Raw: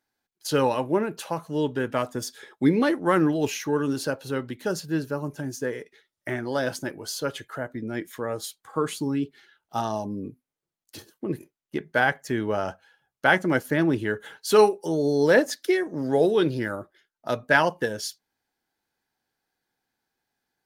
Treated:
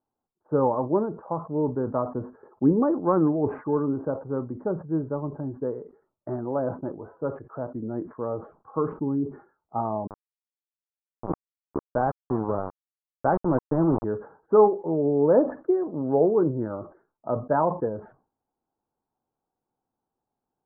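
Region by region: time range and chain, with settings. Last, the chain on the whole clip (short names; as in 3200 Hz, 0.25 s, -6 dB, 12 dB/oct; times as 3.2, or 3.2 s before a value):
10.07–14.04 low shelf 200 Hz +3 dB + sample gate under -23.5 dBFS
whole clip: steep low-pass 1200 Hz 48 dB/oct; sustainer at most 150 dB/s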